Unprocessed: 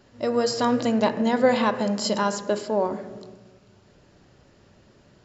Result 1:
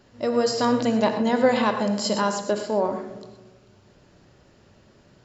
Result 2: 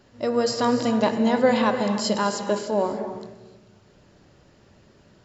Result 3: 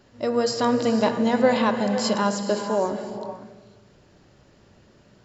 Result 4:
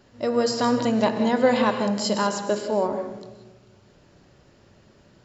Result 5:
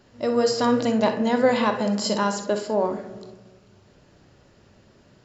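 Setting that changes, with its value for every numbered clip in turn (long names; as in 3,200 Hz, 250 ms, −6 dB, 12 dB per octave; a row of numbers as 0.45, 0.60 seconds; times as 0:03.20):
reverb whose tail is shaped and stops, gate: 140, 330, 530, 210, 80 milliseconds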